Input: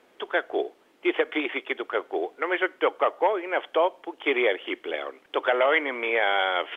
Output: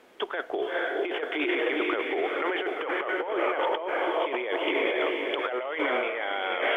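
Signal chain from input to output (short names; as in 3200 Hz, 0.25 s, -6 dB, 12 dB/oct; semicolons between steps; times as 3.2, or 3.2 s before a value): diffused feedback echo 0.456 s, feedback 47%, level -5 dB; negative-ratio compressor -28 dBFS, ratio -1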